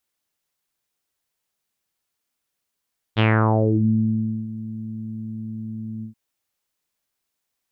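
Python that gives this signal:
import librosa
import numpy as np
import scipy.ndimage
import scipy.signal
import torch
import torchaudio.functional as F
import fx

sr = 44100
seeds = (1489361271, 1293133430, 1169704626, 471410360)

y = fx.sub_voice(sr, note=45, wave='saw', cutoff_hz=230.0, q=3.6, env_oct=4.0, env_s=0.68, attack_ms=32.0, decay_s=1.28, sustain_db=-19, release_s=0.11, note_s=2.87, slope=24)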